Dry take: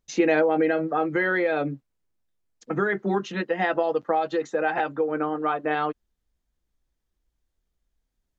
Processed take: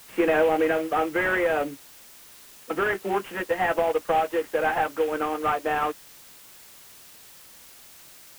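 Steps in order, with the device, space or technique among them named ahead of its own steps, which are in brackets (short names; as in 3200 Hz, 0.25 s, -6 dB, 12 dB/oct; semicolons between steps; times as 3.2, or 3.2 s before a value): army field radio (BPF 390–3100 Hz; CVSD 16 kbps; white noise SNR 22 dB); gain +2.5 dB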